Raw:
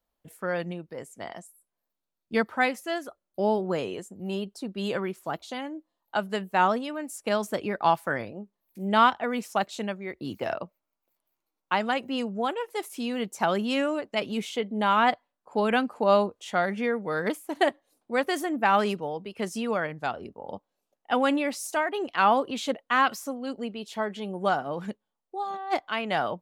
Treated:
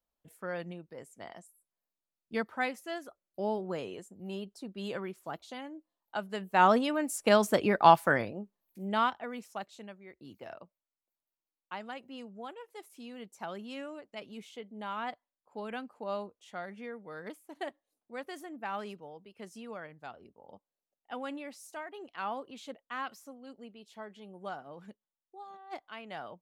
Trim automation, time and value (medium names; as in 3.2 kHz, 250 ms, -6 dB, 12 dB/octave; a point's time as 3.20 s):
6.33 s -8 dB
6.77 s +3 dB
8.05 s +3 dB
9.00 s -8.5 dB
9.82 s -15.5 dB